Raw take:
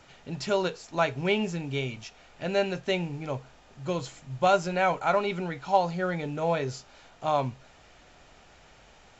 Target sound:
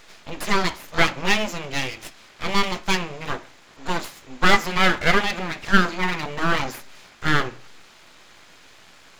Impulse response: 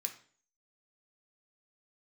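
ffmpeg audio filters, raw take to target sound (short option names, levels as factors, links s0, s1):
-filter_complex "[0:a]lowshelf=f=180:g=-10,aeval=exprs='abs(val(0))':c=same,asplit=2[s0][s1];[1:a]atrim=start_sample=2205,lowpass=5300[s2];[s1][s2]afir=irnorm=-1:irlink=0,volume=0.668[s3];[s0][s3]amix=inputs=2:normalize=0,volume=2.51"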